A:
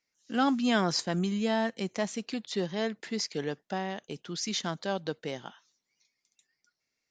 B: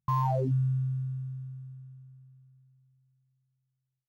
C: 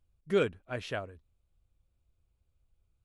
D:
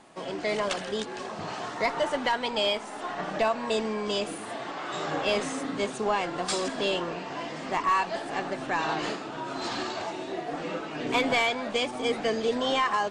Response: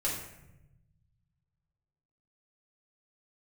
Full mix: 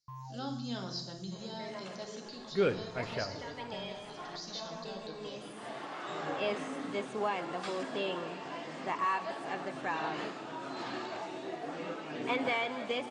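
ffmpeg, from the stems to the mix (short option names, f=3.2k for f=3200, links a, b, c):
-filter_complex "[0:a]highshelf=f=3.2k:t=q:w=3:g=11.5,volume=-19.5dB,asplit=3[a][b][c];[b]volume=-3dB[d];[1:a]volume=-19dB[e];[2:a]adelay=2250,volume=-3dB,asplit=2[f][g];[g]volume=-13dB[h];[3:a]highpass=100,adelay=1150,volume=-7dB,asplit=3[i][j][k];[j]volume=-21.5dB[l];[k]volume=-17dB[m];[c]apad=whole_len=628714[n];[i][n]sidechaincompress=threshold=-55dB:ratio=8:attack=5.1:release=363[o];[4:a]atrim=start_sample=2205[p];[d][h][l]amix=inputs=3:normalize=0[q];[q][p]afir=irnorm=-1:irlink=0[r];[m]aecho=0:1:161|322|483|644|805|966|1127|1288|1449:1|0.59|0.348|0.205|0.121|0.0715|0.0422|0.0249|0.0147[s];[a][e][f][o][r][s]amix=inputs=6:normalize=0,acrossover=split=3500[t][u];[u]acompressor=threshold=-55dB:ratio=4:attack=1:release=60[v];[t][v]amix=inputs=2:normalize=0"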